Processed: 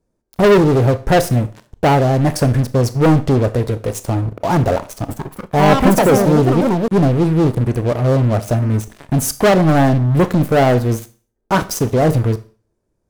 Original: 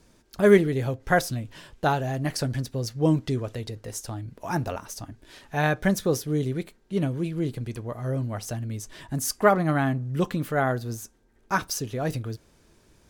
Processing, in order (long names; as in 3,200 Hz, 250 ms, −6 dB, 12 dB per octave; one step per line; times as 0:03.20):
drawn EQ curve 290 Hz 0 dB, 540 Hz +3 dB, 3,200 Hz −15 dB, 8,100 Hz −7 dB
leveller curve on the samples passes 5
four-comb reverb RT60 0.39 s, combs from 25 ms, DRR 13 dB
0:04.87–0:07.26: delay with pitch and tempo change per echo 220 ms, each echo +5 semitones, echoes 2
level −2 dB